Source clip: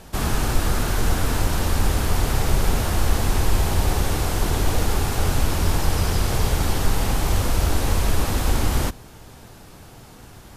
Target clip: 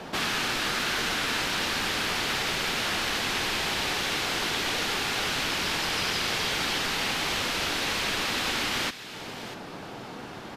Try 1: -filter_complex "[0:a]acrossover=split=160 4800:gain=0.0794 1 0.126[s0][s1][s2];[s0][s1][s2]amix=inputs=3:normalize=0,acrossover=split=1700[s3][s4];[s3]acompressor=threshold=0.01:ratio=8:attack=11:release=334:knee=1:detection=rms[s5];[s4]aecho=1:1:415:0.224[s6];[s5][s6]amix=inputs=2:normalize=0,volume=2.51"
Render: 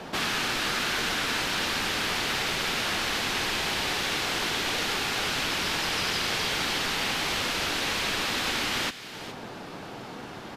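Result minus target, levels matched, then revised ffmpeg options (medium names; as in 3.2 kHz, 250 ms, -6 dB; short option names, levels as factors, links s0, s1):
echo 228 ms early
-filter_complex "[0:a]acrossover=split=160 4800:gain=0.0794 1 0.126[s0][s1][s2];[s0][s1][s2]amix=inputs=3:normalize=0,acrossover=split=1700[s3][s4];[s3]acompressor=threshold=0.01:ratio=8:attack=11:release=334:knee=1:detection=rms[s5];[s4]aecho=1:1:643:0.224[s6];[s5][s6]amix=inputs=2:normalize=0,volume=2.51"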